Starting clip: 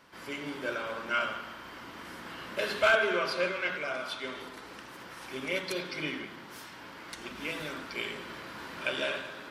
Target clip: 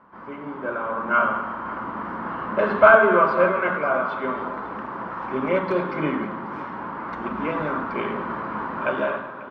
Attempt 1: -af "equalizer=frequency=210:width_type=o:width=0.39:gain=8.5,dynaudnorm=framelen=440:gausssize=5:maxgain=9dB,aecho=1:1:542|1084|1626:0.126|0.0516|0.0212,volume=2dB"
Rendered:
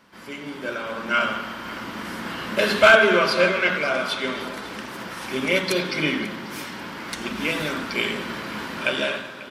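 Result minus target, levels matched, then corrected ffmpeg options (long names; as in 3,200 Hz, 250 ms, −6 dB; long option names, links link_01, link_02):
1,000 Hz band −5.0 dB
-af "lowpass=frequency=1100:width_type=q:width=2.6,equalizer=frequency=210:width_type=o:width=0.39:gain=8.5,dynaudnorm=framelen=440:gausssize=5:maxgain=9dB,aecho=1:1:542|1084|1626:0.126|0.0516|0.0212,volume=2dB"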